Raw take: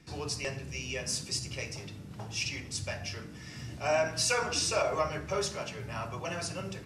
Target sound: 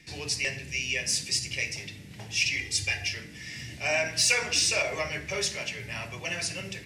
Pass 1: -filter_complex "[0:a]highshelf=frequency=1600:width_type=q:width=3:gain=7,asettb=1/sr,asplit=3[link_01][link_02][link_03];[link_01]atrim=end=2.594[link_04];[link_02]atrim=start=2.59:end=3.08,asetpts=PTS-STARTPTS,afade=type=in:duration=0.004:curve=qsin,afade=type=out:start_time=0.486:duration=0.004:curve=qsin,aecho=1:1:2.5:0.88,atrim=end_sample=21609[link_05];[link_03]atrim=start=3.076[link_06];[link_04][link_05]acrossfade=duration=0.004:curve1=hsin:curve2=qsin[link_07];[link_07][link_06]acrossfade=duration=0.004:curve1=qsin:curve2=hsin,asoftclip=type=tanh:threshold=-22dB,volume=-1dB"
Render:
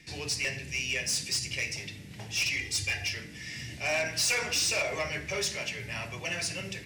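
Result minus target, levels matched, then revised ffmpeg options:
soft clipping: distortion +16 dB
-filter_complex "[0:a]highshelf=frequency=1600:width_type=q:width=3:gain=7,asettb=1/sr,asplit=3[link_01][link_02][link_03];[link_01]atrim=end=2.594[link_04];[link_02]atrim=start=2.59:end=3.08,asetpts=PTS-STARTPTS,afade=type=in:duration=0.004:curve=qsin,afade=type=out:start_time=0.486:duration=0.004:curve=qsin,aecho=1:1:2.5:0.88,atrim=end_sample=21609[link_05];[link_03]atrim=start=3.076[link_06];[link_04][link_05]acrossfade=duration=0.004:curve1=hsin:curve2=qsin[link_07];[link_07][link_06]acrossfade=duration=0.004:curve1=qsin:curve2=hsin,asoftclip=type=tanh:threshold=-10dB,volume=-1dB"

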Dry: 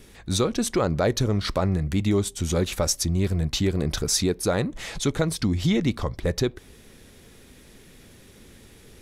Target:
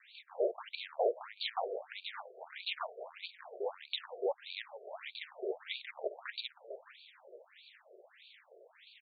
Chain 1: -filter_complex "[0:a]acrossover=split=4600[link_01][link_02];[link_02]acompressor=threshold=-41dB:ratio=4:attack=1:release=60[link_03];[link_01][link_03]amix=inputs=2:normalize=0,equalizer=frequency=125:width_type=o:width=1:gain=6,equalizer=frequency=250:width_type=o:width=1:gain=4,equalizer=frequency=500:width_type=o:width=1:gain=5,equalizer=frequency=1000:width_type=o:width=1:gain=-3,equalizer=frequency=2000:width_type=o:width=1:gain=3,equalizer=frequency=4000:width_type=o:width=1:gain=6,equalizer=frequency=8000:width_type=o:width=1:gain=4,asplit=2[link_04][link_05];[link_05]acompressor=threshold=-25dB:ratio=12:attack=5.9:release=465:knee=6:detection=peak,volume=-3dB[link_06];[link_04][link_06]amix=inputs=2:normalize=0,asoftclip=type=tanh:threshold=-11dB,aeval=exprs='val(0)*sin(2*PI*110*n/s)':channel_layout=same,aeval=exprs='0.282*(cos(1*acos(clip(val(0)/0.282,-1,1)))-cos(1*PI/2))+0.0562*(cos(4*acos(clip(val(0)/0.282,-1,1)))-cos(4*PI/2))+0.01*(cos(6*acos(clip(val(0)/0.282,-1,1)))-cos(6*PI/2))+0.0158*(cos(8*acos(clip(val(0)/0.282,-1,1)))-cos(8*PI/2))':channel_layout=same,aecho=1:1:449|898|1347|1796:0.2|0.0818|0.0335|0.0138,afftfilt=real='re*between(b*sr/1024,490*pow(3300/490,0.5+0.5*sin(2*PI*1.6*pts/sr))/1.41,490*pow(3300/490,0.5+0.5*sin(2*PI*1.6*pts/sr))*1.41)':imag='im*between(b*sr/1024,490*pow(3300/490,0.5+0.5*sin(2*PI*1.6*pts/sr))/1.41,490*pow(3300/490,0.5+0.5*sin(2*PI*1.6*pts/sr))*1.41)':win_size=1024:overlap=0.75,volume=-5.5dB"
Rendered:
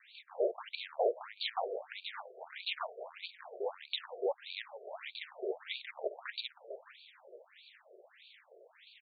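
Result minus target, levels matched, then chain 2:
downward compressor: peak gain reduction −6.5 dB
-filter_complex "[0:a]acrossover=split=4600[link_01][link_02];[link_02]acompressor=threshold=-41dB:ratio=4:attack=1:release=60[link_03];[link_01][link_03]amix=inputs=2:normalize=0,equalizer=frequency=125:width_type=o:width=1:gain=6,equalizer=frequency=250:width_type=o:width=1:gain=4,equalizer=frequency=500:width_type=o:width=1:gain=5,equalizer=frequency=1000:width_type=o:width=1:gain=-3,equalizer=frequency=2000:width_type=o:width=1:gain=3,equalizer=frequency=4000:width_type=o:width=1:gain=6,equalizer=frequency=8000:width_type=o:width=1:gain=4,asplit=2[link_04][link_05];[link_05]acompressor=threshold=-32dB:ratio=12:attack=5.9:release=465:knee=6:detection=peak,volume=-3dB[link_06];[link_04][link_06]amix=inputs=2:normalize=0,asoftclip=type=tanh:threshold=-11dB,aeval=exprs='val(0)*sin(2*PI*110*n/s)':channel_layout=same,aeval=exprs='0.282*(cos(1*acos(clip(val(0)/0.282,-1,1)))-cos(1*PI/2))+0.0562*(cos(4*acos(clip(val(0)/0.282,-1,1)))-cos(4*PI/2))+0.01*(cos(6*acos(clip(val(0)/0.282,-1,1)))-cos(6*PI/2))+0.0158*(cos(8*acos(clip(val(0)/0.282,-1,1)))-cos(8*PI/2))':channel_layout=same,aecho=1:1:449|898|1347|1796:0.2|0.0818|0.0335|0.0138,afftfilt=real='re*between(b*sr/1024,490*pow(3300/490,0.5+0.5*sin(2*PI*1.6*pts/sr))/1.41,490*pow(3300/490,0.5+0.5*sin(2*PI*1.6*pts/sr))*1.41)':imag='im*between(b*sr/1024,490*pow(3300/490,0.5+0.5*sin(2*PI*1.6*pts/sr))/1.41,490*pow(3300/490,0.5+0.5*sin(2*PI*1.6*pts/sr))*1.41)':win_size=1024:overlap=0.75,volume=-5.5dB"

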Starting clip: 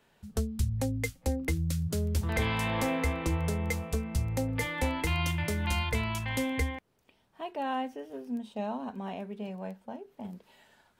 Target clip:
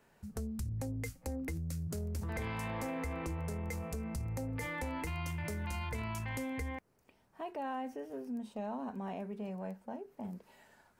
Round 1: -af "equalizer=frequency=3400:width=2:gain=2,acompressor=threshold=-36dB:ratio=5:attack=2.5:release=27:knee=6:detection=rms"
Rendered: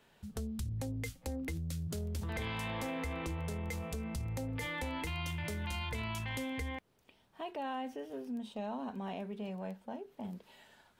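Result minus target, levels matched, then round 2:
4,000 Hz band +7.0 dB
-af "equalizer=frequency=3400:width=2:gain=-9,acompressor=threshold=-36dB:ratio=5:attack=2.5:release=27:knee=6:detection=rms"

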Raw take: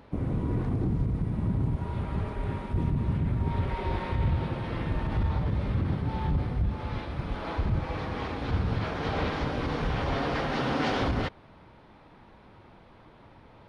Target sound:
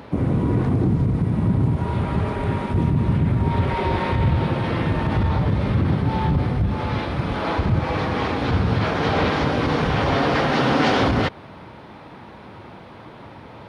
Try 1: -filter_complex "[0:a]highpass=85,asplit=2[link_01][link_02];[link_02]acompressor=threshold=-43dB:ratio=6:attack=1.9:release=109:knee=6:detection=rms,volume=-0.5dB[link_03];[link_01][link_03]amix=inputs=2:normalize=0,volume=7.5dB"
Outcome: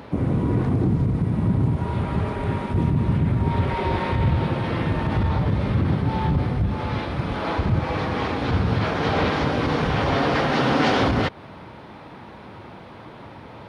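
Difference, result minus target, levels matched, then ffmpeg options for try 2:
downward compressor: peak gain reduction +7.5 dB
-filter_complex "[0:a]highpass=85,asplit=2[link_01][link_02];[link_02]acompressor=threshold=-34dB:ratio=6:attack=1.9:release=109:knee=6:detection=rms,volume=-0.5dB[link_03];[link_01][link_03]amix=inputs=2:normalize=0,volume=7.5dB"

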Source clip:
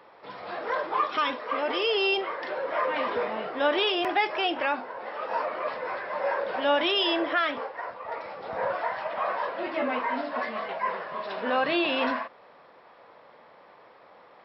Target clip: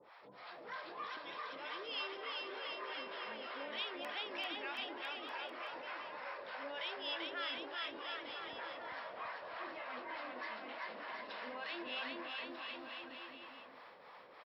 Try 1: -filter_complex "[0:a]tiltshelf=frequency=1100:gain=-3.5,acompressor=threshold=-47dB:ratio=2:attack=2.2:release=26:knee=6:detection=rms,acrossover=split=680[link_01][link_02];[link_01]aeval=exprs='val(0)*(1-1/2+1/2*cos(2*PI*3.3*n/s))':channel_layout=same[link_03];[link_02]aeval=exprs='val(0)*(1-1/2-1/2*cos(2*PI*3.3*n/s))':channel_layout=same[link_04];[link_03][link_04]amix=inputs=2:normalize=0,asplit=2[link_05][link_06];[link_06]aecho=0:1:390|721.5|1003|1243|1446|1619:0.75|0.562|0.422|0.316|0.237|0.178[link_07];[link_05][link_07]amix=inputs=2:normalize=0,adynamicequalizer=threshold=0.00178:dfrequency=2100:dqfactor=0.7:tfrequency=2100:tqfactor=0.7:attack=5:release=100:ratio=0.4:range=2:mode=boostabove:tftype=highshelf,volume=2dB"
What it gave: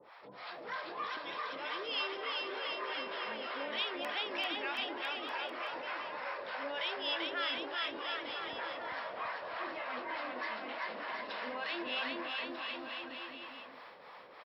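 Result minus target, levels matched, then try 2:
downward compressor: peak gain reduction −5.5 dB
-filter_complex "[0:a]tiltshelf=frequency=1100:gain=-3.5,acompressor=threshold=-58dB:ratio=2:attack=2.2:release=26:knee=6:detection=rms,acrossover=split=680[link_01][link_02];[link_01]aeval=exprs='val(0)*(1-1/2+1/2*cos(2*PI*3.3*n/s))':channel_layout=same[link_03];[link_02]aeval=exprs='val(0)*(1-1/2-1/2*cos(2*PI*3.3*n/s))':channel_layout=same[link_04];[link_03][link_04]amix=inputs=2:normalize=0,asplit=2[link_05][link_06];[link_06]aecho=0:1:390|721.5|1003|1243|1446|1619:0.75|0.562|0.422|0.316|0.237|0.178[link_07];[link_05][link_07]amix=inputs=2:normalize=0,adynamicequalizer=threshold=0.00178:dfrequency=2100:dqfactor=0.7:tfrequency=2100:tqfactor=0.7:attack=5:release=100:ratio=0.4:range=2:mode=boostabove:tftype=highshelf,volume=2dB"

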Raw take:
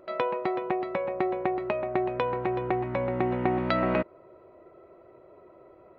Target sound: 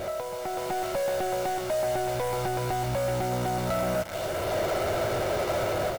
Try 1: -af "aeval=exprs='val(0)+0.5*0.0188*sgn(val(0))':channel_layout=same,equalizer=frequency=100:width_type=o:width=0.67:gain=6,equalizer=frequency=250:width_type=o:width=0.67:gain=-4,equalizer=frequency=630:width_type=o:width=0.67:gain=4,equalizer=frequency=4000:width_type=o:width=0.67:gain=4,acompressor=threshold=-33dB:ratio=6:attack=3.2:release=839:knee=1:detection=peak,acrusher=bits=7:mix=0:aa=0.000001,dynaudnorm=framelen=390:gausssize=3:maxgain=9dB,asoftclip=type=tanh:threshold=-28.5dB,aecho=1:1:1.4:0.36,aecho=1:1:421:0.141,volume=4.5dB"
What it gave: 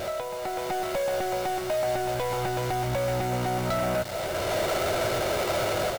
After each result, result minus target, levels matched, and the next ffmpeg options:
echo 140 ms late; 4,000 Hz band +2.5 dB
-af "aeval=exprs='val(0)+0.5*0.0188*sgn(val(0))':channel_layout=same,equalizer=frequency=100:width_type=o:width=0.67:gain=6,equalizer=frequency=250:width_type=o:width=0.67:gain=-4,equalizer=frequency=630:width_type=o:width=0.67:gain=4,equalizer=frequency=4000:width_type=o:width=0.67:gain=4,acompressor=threshold=-33dB:ratio=6:attack=3.2:release=839:knee=1:detection=peak,acrusher=bits=7:mix=0:aa=0.000001,dynaudnorm=framelen=390:gausssize=3:maxgain=9dB,asoftclip=type=tanh:threshold=-28.5dB,aecho=1:1:1.4:0.36,aecho=1:1:281:0.141,volume=4.5dB"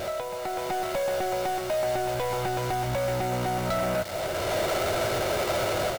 4,000 Hz band +3.0 dB
-af "aeval=exprs='val(0)+0.5*0.0188*sgn(val(0))':channel_layout=same,equalizer=frequency=100:width_type=o:width=0.67:gain=6,equalizer=frequency=250:width_type=o:width=0.67:gain=-4,equalizer=frequency=630:width_type=o:width=0.67:gain=4,equalizer=frequency=4000:width_type=o:width=0.67:gain=4,acompressor=threshold=-33dB:ratio=6:attack=3.2:release=839:knee=1:detection=peak,highshelf=frequency=2200:gain=-11,acrusher=bits=7:mix=0:aa=0.000001,dynaudnorm=framelen=390:gausssize=3:maxgain=9dB,asoftclip=type=tanh:threshold=-28.5dB,aecho=1:1:1.4:0.36,aecho=1:1:281:0.141,volume=4.5dB"

